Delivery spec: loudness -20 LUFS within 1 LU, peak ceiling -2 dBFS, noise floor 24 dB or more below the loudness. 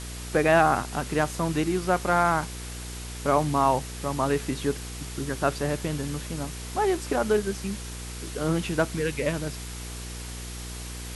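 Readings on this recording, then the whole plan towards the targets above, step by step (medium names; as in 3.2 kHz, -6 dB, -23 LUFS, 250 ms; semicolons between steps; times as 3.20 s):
hum 60 Hz; highest harmonic 480 Hz; hum level -36 dBFS; noise floor -37 dBFS; noise floor target -51 dBFS; loudness -27.0 LUFS; peak level -7.5 dBFS; loudness target -20.0 LUFS
-> de-hum 60 Hz, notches 8; noise reduction 14 dB, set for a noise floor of -37 dBFS; trim +7 dB; peak limiter -2 dBFS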